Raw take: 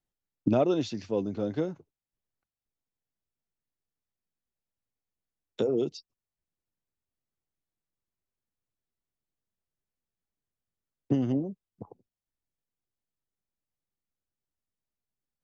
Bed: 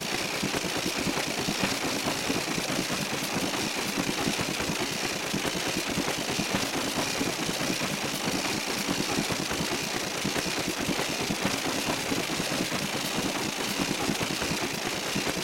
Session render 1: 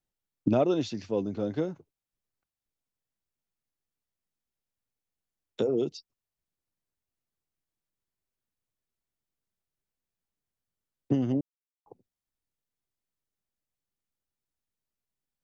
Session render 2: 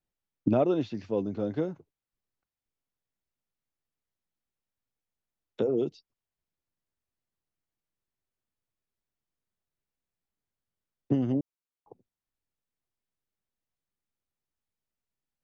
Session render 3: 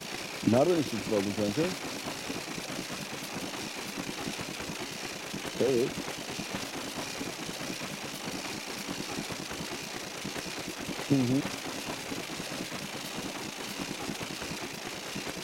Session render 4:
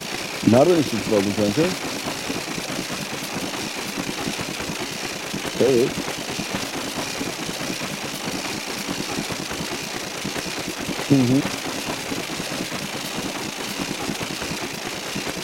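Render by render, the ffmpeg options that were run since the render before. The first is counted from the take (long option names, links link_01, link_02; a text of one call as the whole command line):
ffmpeg -i in.wav -filter_complex "[0:a]asplit=3[link_01][link_02][link_03];[link_01]atrim=end=11.41,asetpts=PTS-STARTPTS,afade=type=out:start_time=11.406:duration=0.004:curve=hsin[link_04];[link_02]atrim=start=11.41:end=11.86,asetpts=PTS-STARTPTS,volume=0[link_05];[link_03]atrim=start=11.86,asetpts=PTS-STARTPTS,afade=type=in:duration=0.004:curve=hsin[link_06];[link_04][link_05][link_06]concat=n=3:v=0:a=1" out.wav
ffmpeg -i in.wav -filter_complex "[0:a]highshelf=frequency=4500:gain=-9,acrossover=split=3600[link_01][link_02];[link_02]acompressor=threshold=-59dB:ratio=4:attack=1:release=60[link_03];[link_01][link_03]amix=inputs=2:normalize=0" out.wav
ffmpeg -i in.wav -i bed.wav -filter_complex "[1:a]volume=-8dB[link_01];[0:a][link_01]amix=inputs=2:normalize=0" out.wav
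ffmpeg -i in.wav -af "volume=9.5dB" out.wav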